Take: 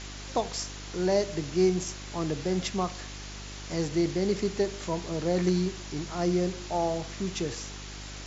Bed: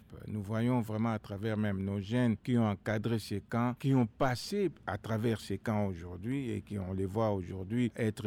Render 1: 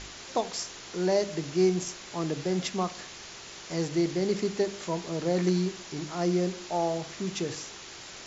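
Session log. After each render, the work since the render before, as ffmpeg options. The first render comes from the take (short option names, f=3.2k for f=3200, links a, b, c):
-af "bandreject=f=50:t=h:w=4,bandreject=f=100:t=h:w=4,bandreject=f=150:t=h:w=4,bandreject=f=200:t=h:w=4,bandreject=f=250:t=h:w=4,bandreject=f=300:t=h:w=4"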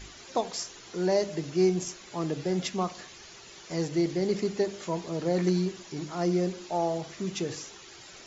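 -af "afftdn=nr=9:nf=-45"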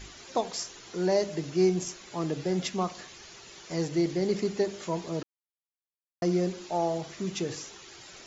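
-filter_complex "[0:a]asplit=3[a][b][c];[a]atrim=end=5.23,asetpts=PTS-STARTPTS,afade=t=out:st=5.226:d=0.004:c=hsin[d];[b]atrim=start=5.23:end=6.22,asetpts=PTS-STARTPTS,volume=0[e];[c]atrim=start=6.22,asetpts=PTS-STARTPTS,afade=t=in:d=0.004:c=hsin[f];[d][e][f]concat=n=3:v=0:a=1"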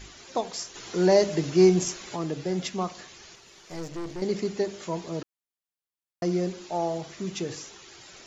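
-filter_complex "[0:a]asplit=3[a][b][c];[a]afade=t=out:st=0.74:d=0.02[d];[b]acontrast=58,afade=t=in:st=0.74:d=0.02,afade=t=out:st=2.15:d=0.02[e];[c]afade=t=in:st=2.15:d=0.02[f];[d][e][f]amix=inputs=3:normalize=0,asettb=1/sr,asplit=3[g][h][i];[g]atrim=end=3.354[j];[h]atrim=start=3.35:end=4.22,asetpts=PTS-STARTPTS,afade=t=in:d=0.004:c=qsin,afade=t=out:st=0.866:d=0.004:c=qsin,aeval=exprs='(tanh(39.8*val(0)+0.7)-tanh(0.7))/39.8':c=same[k];[i]atrim=start=4.216[l];[j][k]acrossfade=d=0.004:c1=hsin:c2=qsin[m];[m][l]acrossfade=d=0.004:c1=qsin:c2=hsin"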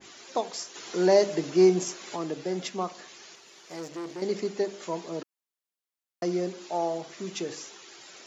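-af "highpass=250,adynamicequalizer=threshold=0.00794:dfrequency=1500:dqfactor=0.7:tfrequency=1500:tqfactor=0.7:attack=5:release=100:ratio=0.375:range=2:mode=cutabove:tftype=highshelf"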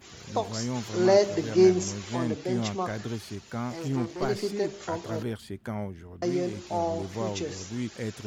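-filter_complex "[1:a]volume=-1.5dB[a];[0:a][a]amix=inputs=2:normalize=0"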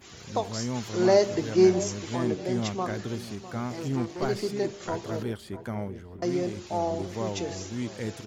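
-filter_complex "[0:a]asplit=2[a][b];[b]adelay=652,lowpass=f=1.2k:p=1,volume=-13.5dB,asplit=2[c][d];[d]adelay=652,lowpass=f=1.2k:p=1,volume=0.38,asplit=2[e][f];[f]adelay=652,lowpass=f=1.2k:p=1,volume=0.38,asplit=2[g][h];[h]adelay=652,lowpass=f=1.2k:p=1,volume=0.38[i];[a][c][e][g][i]amix=inputs=5:normalize=0"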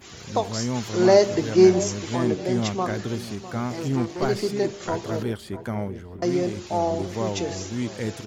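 -af "volume=4.5dB"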